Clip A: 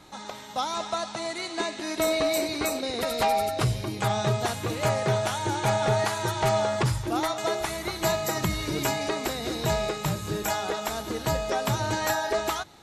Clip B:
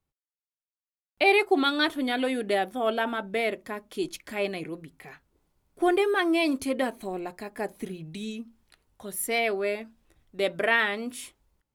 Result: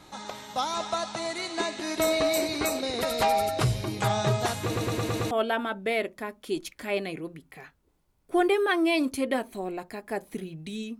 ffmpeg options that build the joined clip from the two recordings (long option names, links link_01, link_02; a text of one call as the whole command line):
ffmpeg -i cue0.wav -i cue1.wav -filter_complex "[0:a]apad=whole_dur=10.99,atrim=end=10.99,asplit=6[link_01][link_02][link_03][link_04][link_05][link_06];[link_01]atrim=end=4.762[link_07];[link_02]atrim=start=4.648:end=4.762[link_08];[link_03]atrim=start=4.648:end=4.762[link_09];[link_04]atrim=start=4.648:end=4.762[link_10];[link_05]atrim=start=4.648:end=4.762[link_11];[link_06]atrim=start=4.648:end=4.762[link_12];[1:a]atrim=start=2.788:end=8.47[link_13];[link_07][link_08]acrossfade=duration=0.004:curve1=hsin:curve2=hsin[link_14];[link_14][link_09]acrossfade=duration=0.004:curve1=hsin:curve2=hsin[link_15];[link_15][link_10]acrossfade=duration=0.004:curve1=hsin:curve2=hsin[link_16];[link_16][link_11]acrossfade=duration=0.004:curve1=hsin:curve2=hsin[link_17];[link_17][link_12]acrossfade=duration=0.004:curve1=hsin:curve2=hsin[link_18];[link_18][link_13]acrossfade=duration=0.004:curve1=hsin:curve2=hsin" out.wav